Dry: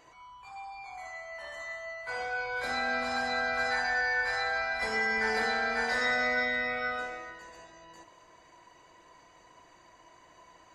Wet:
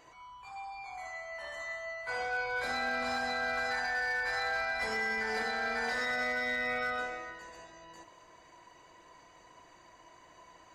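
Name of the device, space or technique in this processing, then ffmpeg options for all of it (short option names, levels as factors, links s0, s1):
limiter into clipper: -af "alimiter=limit=0.0631:level=0:latency=1:release=115,asoftclip=type=hard:threshold=0.0447"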